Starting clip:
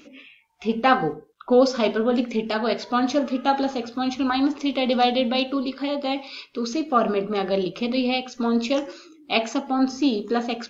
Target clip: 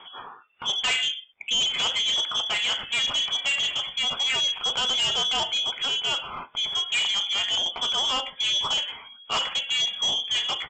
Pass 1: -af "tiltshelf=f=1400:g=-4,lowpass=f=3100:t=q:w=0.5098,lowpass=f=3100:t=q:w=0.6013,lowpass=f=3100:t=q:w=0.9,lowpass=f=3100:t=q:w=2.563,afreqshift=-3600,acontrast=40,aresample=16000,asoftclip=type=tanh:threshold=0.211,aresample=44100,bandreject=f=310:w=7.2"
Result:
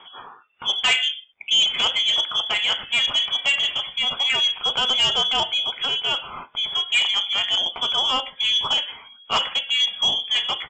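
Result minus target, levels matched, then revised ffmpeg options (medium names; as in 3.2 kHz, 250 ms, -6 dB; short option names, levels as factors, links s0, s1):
saturation: distortion -6 dB
-af "tiltshelf=f=1400:g=-4,lowpass=f=3100:t=q:w=0.5098,lowpass=f=3100:t=q:w=0.6013,lowpass=f=3100:t=q:w=0.9,lowpass=f=3100:t=q:w=2.563,afreqshift=-3600,acontrast=40,aresample=16000,asoftclip=type=tanh:threshold=0.0841,aresample=44100,bandreject=f=310:w=7.2"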